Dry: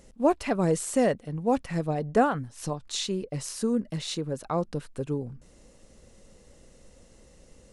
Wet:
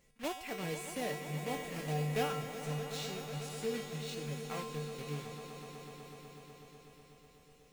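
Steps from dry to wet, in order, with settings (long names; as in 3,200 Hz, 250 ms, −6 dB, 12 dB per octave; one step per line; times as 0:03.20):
one scale factor per block 3 bits
parametric band 2,400 Hz +8 dB 0.93 octaves
tuned comb filter 150 Hz, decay 0.73 s, harmonics odd, mix 90%
on a send: echo that builds up and dies away 124 ms, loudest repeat 5, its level −12.5 dB
on the sum: level +1 dB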